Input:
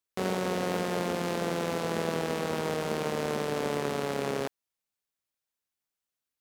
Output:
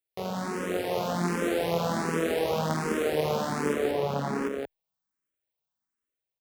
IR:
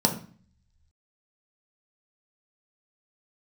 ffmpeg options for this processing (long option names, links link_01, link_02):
-filter_complex "[0:a]highshelf=frequency=8300:gain=8,dynaudnorm=framelen=350:gausssize=5:maxgain=5dB,asetnsamples=nb_out_samples=441:pad=0,asendcmd='3.73 equalizer g -14',equalizer=frequency=11000:width_type=o:width=2.7:gain=-5.5,aecho=1:1:177:0.631,asplit=2[link_01][link_02];[link_02]afreqshift=1.3[link_03];[link_01][link_03]amix=inputs=2:normalize=1"